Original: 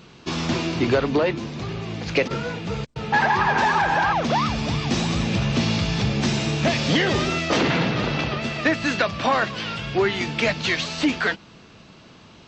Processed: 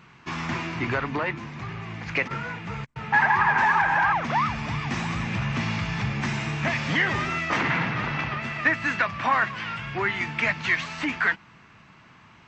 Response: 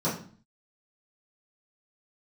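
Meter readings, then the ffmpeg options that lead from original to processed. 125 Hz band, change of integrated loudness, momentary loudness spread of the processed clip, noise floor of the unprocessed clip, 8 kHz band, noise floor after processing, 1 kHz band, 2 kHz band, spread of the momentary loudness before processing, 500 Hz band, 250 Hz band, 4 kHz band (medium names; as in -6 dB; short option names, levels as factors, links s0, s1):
-5.0 dB, -2.5 dB, 12 LU, -48 dBFS, -10.0 dB, -53 dBFS, -1.5 dB, +1.0 dB, 9 LU, -10.5 dB, -8.0 dB, -9.0 dB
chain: -af "equalizer=f=125:t=o:w=1:g=5,equalizer=f=500:t=o:w=1:g=-6,equalizer=f=1000:t=o:w=1:g=8,equalizer=f=2000:t=o:w=1:g=11,equalizer=f=4000:t=o:w=1:g=-6,volume=0.376"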